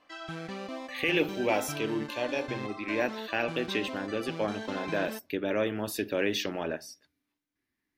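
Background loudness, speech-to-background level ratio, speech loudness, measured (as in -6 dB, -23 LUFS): -39.5 LUFS, 8.0 dB, -31.5 LUFS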